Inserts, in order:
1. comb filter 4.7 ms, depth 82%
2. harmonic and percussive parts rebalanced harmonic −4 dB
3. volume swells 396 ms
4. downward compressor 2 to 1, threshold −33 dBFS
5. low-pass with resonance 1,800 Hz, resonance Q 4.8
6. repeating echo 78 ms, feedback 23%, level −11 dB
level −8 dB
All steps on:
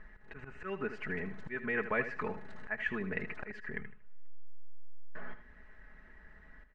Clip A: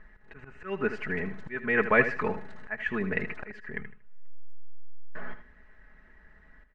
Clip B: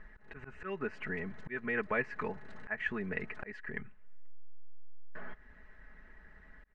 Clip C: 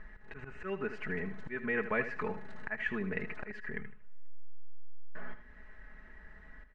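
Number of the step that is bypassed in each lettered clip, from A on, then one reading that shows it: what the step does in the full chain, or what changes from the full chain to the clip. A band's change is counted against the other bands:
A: 4, average gain reduction 3.5 dB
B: 6, change in crest factor +1.5 dB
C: 2, change in crest factor −1.5 dB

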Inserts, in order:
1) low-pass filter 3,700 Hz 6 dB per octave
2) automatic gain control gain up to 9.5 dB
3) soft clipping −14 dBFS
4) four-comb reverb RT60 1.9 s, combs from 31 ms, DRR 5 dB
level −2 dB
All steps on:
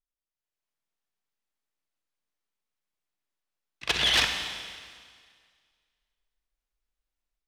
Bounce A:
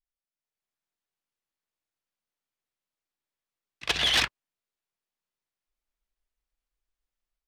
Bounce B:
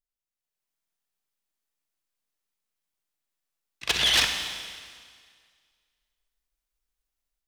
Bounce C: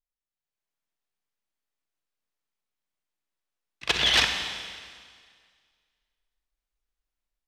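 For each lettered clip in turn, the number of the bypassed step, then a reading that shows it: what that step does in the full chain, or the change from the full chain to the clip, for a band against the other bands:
4, change in momentary loudness spread −8 LU
1, 8 kHz band +5.0 dB
3, distortion level −18 dB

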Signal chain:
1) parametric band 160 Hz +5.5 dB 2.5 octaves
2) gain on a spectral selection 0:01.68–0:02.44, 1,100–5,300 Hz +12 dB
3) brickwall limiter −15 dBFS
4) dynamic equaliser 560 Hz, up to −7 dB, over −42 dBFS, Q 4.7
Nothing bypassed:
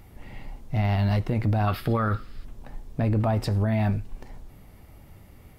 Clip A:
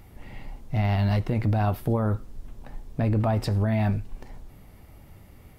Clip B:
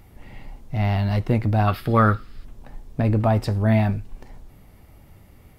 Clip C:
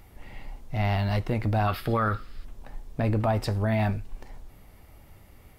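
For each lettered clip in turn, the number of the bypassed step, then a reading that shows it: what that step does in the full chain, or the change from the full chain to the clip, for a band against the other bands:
2, change in momentary loudness spread +3 LU
3, change in crest factor +6.0 dB
1, 125 Hz band −3.5 dB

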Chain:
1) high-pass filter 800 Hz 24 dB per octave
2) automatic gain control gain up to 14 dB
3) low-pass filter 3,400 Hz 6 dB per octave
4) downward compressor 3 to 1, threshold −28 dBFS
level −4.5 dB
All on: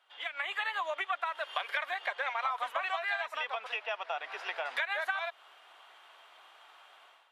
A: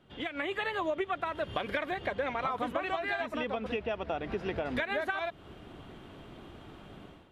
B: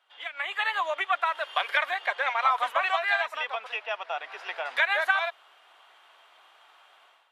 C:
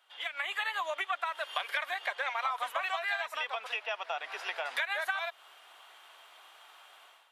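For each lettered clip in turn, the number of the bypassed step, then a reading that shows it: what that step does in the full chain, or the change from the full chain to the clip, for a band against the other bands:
1, 500 Hz band +9.5 dB
4, average gain reduction 4.5 dB
3, 4 kHz band +2.0 dB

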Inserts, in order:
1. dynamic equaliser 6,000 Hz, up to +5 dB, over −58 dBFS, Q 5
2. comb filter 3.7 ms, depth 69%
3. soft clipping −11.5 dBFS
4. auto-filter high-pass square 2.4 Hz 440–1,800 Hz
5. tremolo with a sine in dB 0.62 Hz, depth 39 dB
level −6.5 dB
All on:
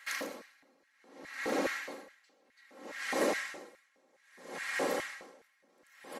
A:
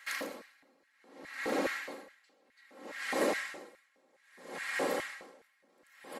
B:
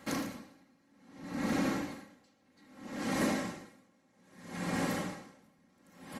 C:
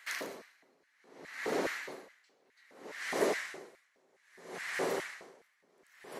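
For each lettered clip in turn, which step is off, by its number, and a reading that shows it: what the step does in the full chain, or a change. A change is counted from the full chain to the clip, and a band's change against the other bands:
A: 1, 8 kHz band −2.0 dB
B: 4, 125 Hz band +18.0 dB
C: 2, change in crest factor +2.5 dB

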